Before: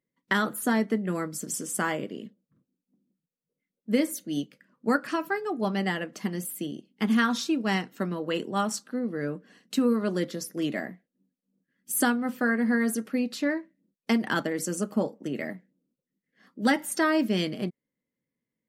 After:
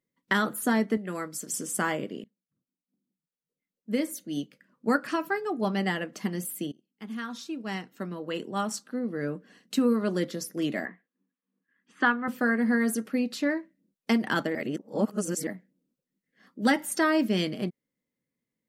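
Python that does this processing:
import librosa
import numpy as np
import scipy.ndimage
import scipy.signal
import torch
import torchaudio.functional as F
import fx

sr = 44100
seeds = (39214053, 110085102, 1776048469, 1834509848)

y = fx.low_shelf(x, sr, hz=370.0, db=-9.0, at=(0.97, 1.54))
y = fx.cabinet(y, sr, low_hz=280.0, low_slope=12, high_hz=3300.0, hz=(340.0, 600.0, 1100.0, 1700.0), db=(-3, -9, 9, 7), at=(10.85, 12.28))
y = fx.edit(y, sr, fx.fade_in_from(start_s=2.24, length_s=2.77, floor_db=-22.5),
    fx.fade_in_from(start_s=6.72, length_s=2.64, floor_db=-23.0),
    fx.reverse_span(start_s=14.55, length_s=0.92), tone=tone)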